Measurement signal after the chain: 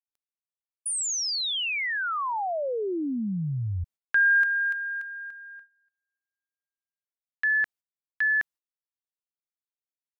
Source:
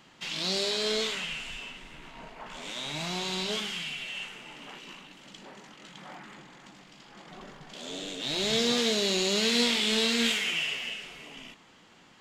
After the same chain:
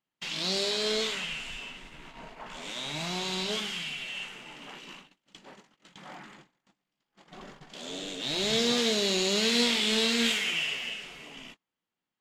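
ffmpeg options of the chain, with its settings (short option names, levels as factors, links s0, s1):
-af "agate=range=0.0224:threshold=0.00447:ratio=16:detection=peak"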